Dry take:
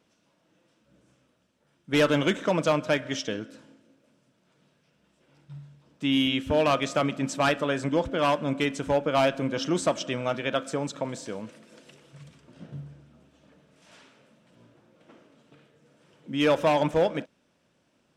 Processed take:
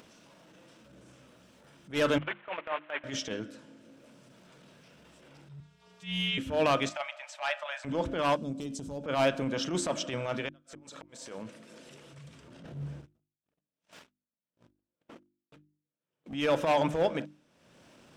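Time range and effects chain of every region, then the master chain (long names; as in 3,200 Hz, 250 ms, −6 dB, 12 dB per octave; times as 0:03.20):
0:02.18–0:03.04: linear delta modulator 16 kbit/s, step −26.5 dBFS + high-pass filter 760 Hz + noise gate −32 dBFS, range −20 dB
0:05.60–0:06.38: meter weighting curve A + phases set to zero 246 Hz + frequency shifter −65 Hz
0:06.89–0:07.85: Chebyshev high-pass with heavy ripple 580 Hz, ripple 6 dB + high-shelf EQ 8,200 Hz −11 dB
0:08.36–0:09.04: drawn EQ curve 260 Hz 0 dB, 2,000 Hz −21 dB, 4,800 Hz 0 dB + downward compressor 2.5 to 1, threshold −31 dBFS
0:10.48–0:11.38: low-shelf EQ 320 Hz −9.5 dB + gate with flip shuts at −21 dBFS, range −37 dB
0:12.65–0:16.34: noise gate −53 dBFS, range −58 dB + leveller curve on the samples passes 2
whole clip: mains-hum notches 50/100/150/200/250/300/350 Hz; transient designer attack −12 dB, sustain +1 dB; upward compression, threshold −43 dBFS; level −1.5 dB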